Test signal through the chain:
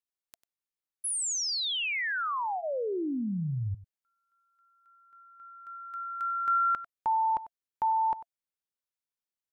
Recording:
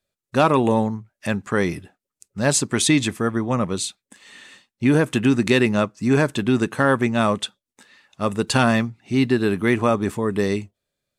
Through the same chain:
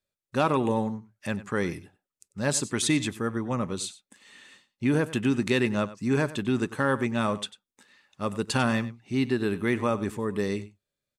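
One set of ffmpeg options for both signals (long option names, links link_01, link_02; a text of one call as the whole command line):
ffmpeg -i in.wav -filter_complex "[0:a]bandreject=frequency=680:width=12,asplit=2[link_01][link_02];[link_02]aecho=0:1:96:0.15[link_03];[link_01][link_03]amix=inputs=2:normalize=0,volume=-7dB" out.wav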